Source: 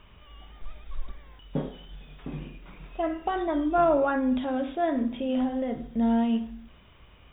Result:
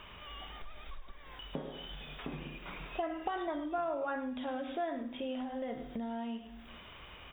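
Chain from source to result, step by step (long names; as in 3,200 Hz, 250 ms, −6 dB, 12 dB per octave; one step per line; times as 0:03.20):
single-tap delay 103 ms −12 dB
downward compressor 8 to 1, threshold −38 dBFS, peak gain reduction 20 dB
low-shelf EQ 340 Hz −11 dB
level +7.5 dB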